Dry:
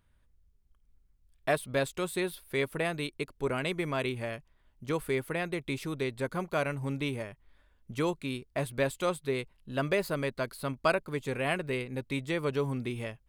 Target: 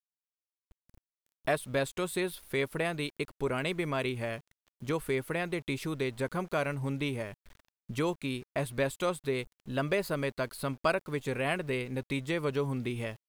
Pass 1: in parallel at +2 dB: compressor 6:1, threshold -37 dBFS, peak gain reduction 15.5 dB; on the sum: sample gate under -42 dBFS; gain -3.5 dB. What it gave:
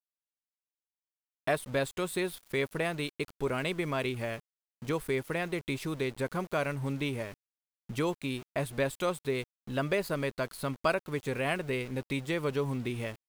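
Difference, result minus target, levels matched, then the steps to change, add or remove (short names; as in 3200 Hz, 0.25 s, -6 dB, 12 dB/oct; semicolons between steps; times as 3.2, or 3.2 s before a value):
sample gate: distortion +7 dB
change: sample gate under -49 dBFS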